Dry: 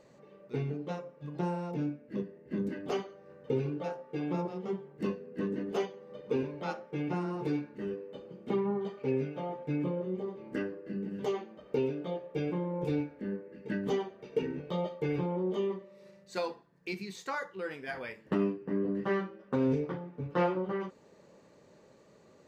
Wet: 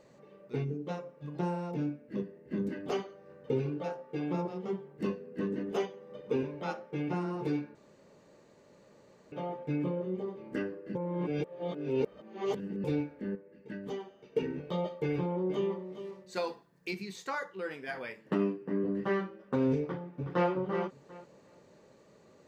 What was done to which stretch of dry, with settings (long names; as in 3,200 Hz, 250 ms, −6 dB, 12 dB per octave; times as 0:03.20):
0:00.64–0:00.86: gain on a spectral selection 540–5,300 Hz −10 dB
0:05.63–0:06.78: notch filter 4,400 Hz, Q 13
0:07.75–0:09.32: fill with room tone
0:10.95–0:12.84: reverse
0:13.35–0:14.36: tuned comb filter 54 Hz, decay 1.5 s, harmonics odd
0:15.08–0:15.84: delay throw 410 ms, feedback 15%, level −11 dB
0:16.47–0:16.91: high-shelf EQ 4,700 Hz +7.5 dB
0:17.42–0:18.84: high-pass filter 120 Hz
0:19.81–0:20.50: delay throw 370 ms, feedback 20%, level −8 dB